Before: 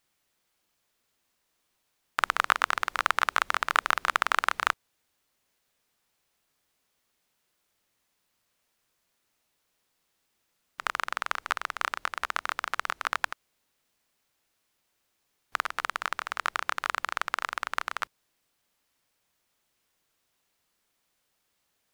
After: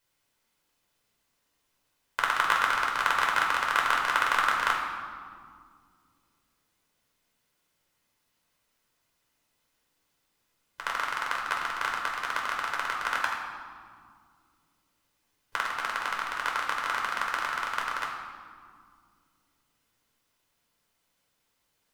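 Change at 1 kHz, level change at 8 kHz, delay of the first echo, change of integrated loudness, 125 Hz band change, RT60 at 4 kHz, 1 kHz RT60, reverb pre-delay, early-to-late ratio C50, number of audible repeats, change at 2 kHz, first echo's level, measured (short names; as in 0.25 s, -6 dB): +1.5 dB, 0.0 dB, none, +1.0 dB, n/a, 1.3 s, 2.0 s, 9 ms, 3.0 dB, none, +1.5 dB, none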